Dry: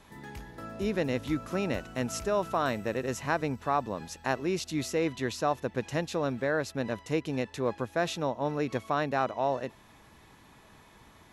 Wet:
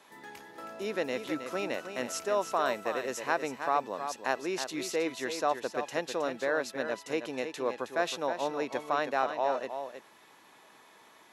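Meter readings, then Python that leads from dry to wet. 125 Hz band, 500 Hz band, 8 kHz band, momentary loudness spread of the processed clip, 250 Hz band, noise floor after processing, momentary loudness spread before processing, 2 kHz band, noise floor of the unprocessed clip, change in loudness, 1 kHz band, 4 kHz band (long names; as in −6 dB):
−16.0 dB, −0.5 dB, +0.5 dB, 7 LU, −6.0 dB, −58 dBFS, 5 LU, +0.5 dB, −57 dBFS, −1.0 dB, +0.5 dB, +0.5 dB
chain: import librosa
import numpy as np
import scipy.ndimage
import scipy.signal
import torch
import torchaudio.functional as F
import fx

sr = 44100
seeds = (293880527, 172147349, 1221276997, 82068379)

p1 = scipy.signal.sosfilt(scipy.signal.butter(2, 380.0, 'highpass', fs=sr, output='sos'), x)
y = p1 + fx.echo_single(p1, sr, ms=318, db=-8.5, dry=0)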